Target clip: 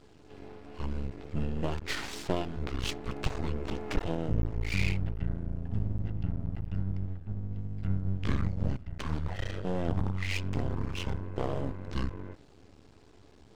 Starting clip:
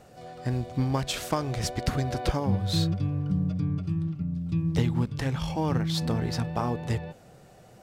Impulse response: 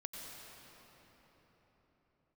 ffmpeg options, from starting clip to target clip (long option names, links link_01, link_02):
-af "bandreject=frequency=71.75:width_type=h:width=4,bandreject=frequency=143.5:width_type=h:width=4,asetrate=25442,aresample=44100,aeval=exprs='max(val(0),0)':channel_layout=same"